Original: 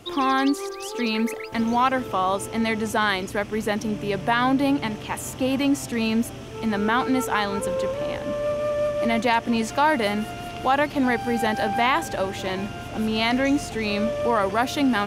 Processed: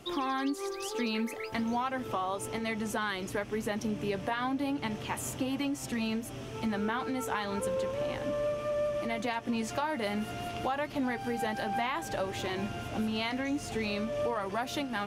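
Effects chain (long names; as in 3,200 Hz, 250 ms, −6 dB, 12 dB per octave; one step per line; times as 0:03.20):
downward compressor, threshold −25 dBFS, peak gain reduction 10 dB
flanger 0.34 Hz, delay 5.1 ms, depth 5.7 ms, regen −54%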